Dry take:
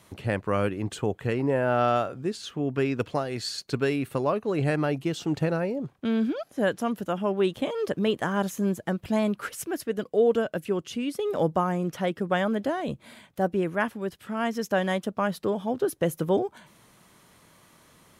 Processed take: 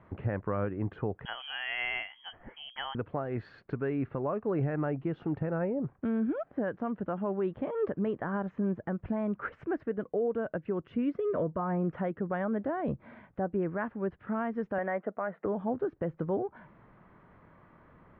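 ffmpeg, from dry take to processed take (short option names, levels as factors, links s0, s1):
-filter_complex "[0:a]asettb=1/sr,asplit=3[s0][s1][s2];[s0]atrim=end=1.254[s3];[s1]atrim=start=1.25:end=2.95,asetpts=PTS-STARTPTS,afade=t=in:d=0.004:c=qsin,afade=t=out:st=1.696:d=0.004:c=qsin,lowpass=f=2900:t=q:w=0.5098,lowpass=f=2900:t=q:w=0.6013,lowpass=f=2900:t=q:w=0.9,lowpass=f=2900:t=q:w=2.563,afreqshift=-3400[s4];[s2]atrim=start=2.946[s5];[s3][s4]acrossfade=d=0.004:c1=hsin:c2=qsin[s6];[s6][s5]acrossfade=d=0.004:c1=qsin:c2=hsin,asettb=1/sr,asplit=3[s7][s8][s9];[s7]atrim=end=10.914[s10];[s8]atrim=start=10.91:end=11.9,asetpts=PTS-STARTPTS,afade=t=in:d=0.004:c=qsin,afade=t=out:st=0.986:d=0.004:c=qsin,asuperstop=centerf=810:order=20:qfactor=6.2[s11];[s9]atrim=start=11.896[s12];[s10][s11]acrossfade=d=0.004:c1=hsin:c2=qsin[s13];[s13][s12]acrossfade=d=0.004:c1=qsin:c2=hsin,asettb=1/sr,asplit=3[s14][s15][s16];[s14]atrim=end=14.784[s17];[s15]atrim=start=14.78:end=15.46,asetpts=PTS-STARTPTS,afade=t=in:d=0.004:c=qsin,afade=t=out:st=0.676:d=0.004:c=qsin,highpass=250,equalizer=f=470:t=q:w=4:g=5,equalizer=f=680:t=q:w=4:g=9,equalizer=f=1400:t=q:w=4:g=5,equalizer=f=2000:t=q:w=4:g=9,lowpass=f=2700:w=0.5412,lowpass=f=2700:w=1.3066[s18];[s16]atrim=start=15.456[s19];[s17][s18]acrossfade=d=0.004:c1=hsin:c2=qsin[s20];[s20][s19]acrossfade=d=0.004:c1=qsin:c2=hsin,lowpass=f=1800:w=0.5412,lowpass=f=1800:w=1.3066,lowshelf=f=62:g=9.5,alimiter=limit=0.075:level=0:latency=1:release=267"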